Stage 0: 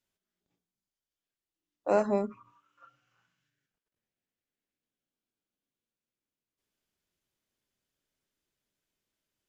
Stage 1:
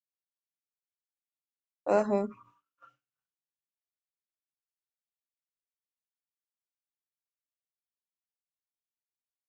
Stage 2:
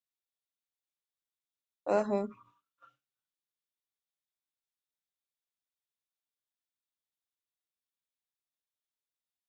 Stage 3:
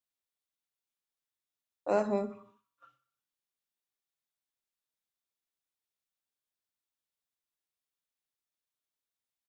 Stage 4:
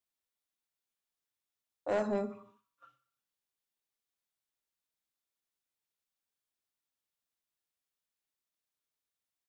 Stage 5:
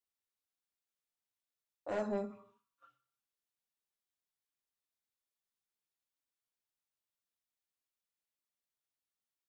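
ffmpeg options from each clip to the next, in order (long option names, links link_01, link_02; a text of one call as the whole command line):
ffmpeg -i in.wav -af "agate=range=-33dB:threshold=-57dB:ratio=3:detection=peak" out.wav
ffmpeg -i in.wav -af "equalizer=frequency=3600:width_type=o:width=0.3:gain=8,volume=-3dB" out.wav
ffmpeg -i in.wav -af "aecho=1:1:62|124|186|248|310:0.141|0.0749|0.0397|0.021|0.0111" out.wav
ffmpeg -i in.wav -af "asoftclip=type=tanh:threshold=-23.5dB" out.wav
ffmpeg -i in.wav -af "flanger=delay=7.8:depth=4.6:regen=-39:speed=0.58:shape=triangular,volume=-1dB" out.wav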